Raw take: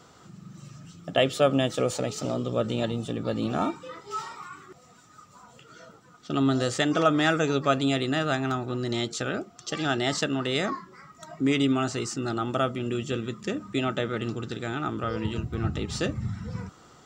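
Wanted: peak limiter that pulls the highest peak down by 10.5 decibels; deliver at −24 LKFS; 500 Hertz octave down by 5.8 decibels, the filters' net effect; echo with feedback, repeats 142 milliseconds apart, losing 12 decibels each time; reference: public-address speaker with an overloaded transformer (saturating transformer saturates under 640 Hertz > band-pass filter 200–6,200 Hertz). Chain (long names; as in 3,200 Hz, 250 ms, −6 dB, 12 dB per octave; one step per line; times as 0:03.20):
parametric band 500 Hz −7.5 dB
brickwall limiter −21 dBFS
repeating echo 142 ms, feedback 25%, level −12 dB
saturating transformer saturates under 640 Hz
band-pass filter 200–6,200 Hz
level +12 dB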